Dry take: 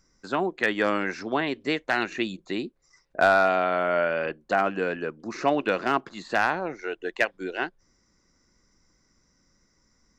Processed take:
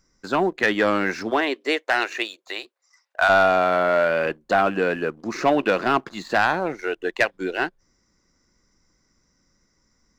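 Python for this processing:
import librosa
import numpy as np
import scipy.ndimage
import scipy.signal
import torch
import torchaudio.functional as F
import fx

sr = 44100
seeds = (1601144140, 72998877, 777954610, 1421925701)

y = fx.highpass(x, sr, hz=fx.line((1.3, 280.0), (3.28, 800.0)), slope=24, at=(1.3, 3.28), fade=0.02)
y = fx.leveller(y, sr, passes=1)
y = y * librosa.db_to_amplitude(2.0)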